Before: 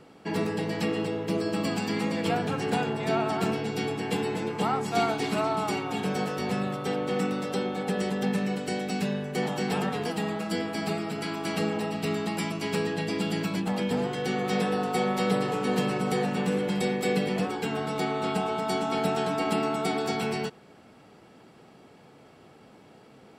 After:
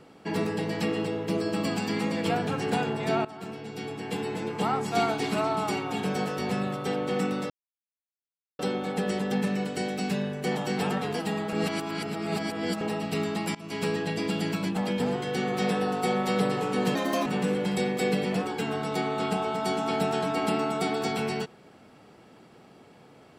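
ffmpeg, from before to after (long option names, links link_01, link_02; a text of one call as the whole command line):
ffmpeg -i in.wav -filter_complex "[0:a]asplit=8[link_01][link_02][link_03][link_04][link_05][link_06][link_07][link_08];[link_01]atrim=end=3.25,asetpts=PTS-STARTPTS,afade=type=out:start_time=3.246:duration=0.004:curve=hsin:silence=0.141254[link_09];[link_02]atrim=start=3.25:end=7.5,asetpts=PTS-STARTPTS,afade=type=in:duration=1.46:silence=0.141254,afade=type=out:start_time=4.246:duration=0.004:curve=hsin,apad=pad_dur=1.09[link_10];[link_03]atrim=start=7.5:end=10.442,asetpts=PTS-STARTPTS,afade=type=in:duration=0.004:curve=hsin[link_11];[link_04]atrim=start=10.438:end=11.722,asetpts=PTS-STARTPTS,areverse[link_12];[link_05]atrim=start=11.718:end=12.46,asetpts=PTS-STARTPTS,afade=type=out:start_time=0.738:duration=0.004:curve=hsin:silence=0.0749894[link_13];[link_06]atrim=start=12.46:end=15.864,asetpts=PTS-STARTPTS,afade=type=in:duration=0.39:curve=qsin:silence=0.0749894[link_14];[link_07]atrim=start=15.86:end=16.3,asetpts=PTS-STARTPTS,asetrate=62181,aresample=44100[link_15];[link_08]atrim=start=16.296[link_16];[link_09][link_10][link_11]concat=n=3:v=0:a=1[link_17];[link_17][link_12]acrossfade=duration=0.004:curve1=hsin:curve2=hsin[link_18];[link_13][link_14]concat=n=2:v=0:a=1[link_19];[link_18][link_19]acrossfade=duration=0.004:curve1=hsin:curve2=hsin[link_20];[link_20][link_15]acrossfade=duration=0.004:curve1=hsin:curve2=hsin[link_21];[link_21][link_16]acrossfade=duration=0.004:curve1=hsin:curve2=hsin" out.wav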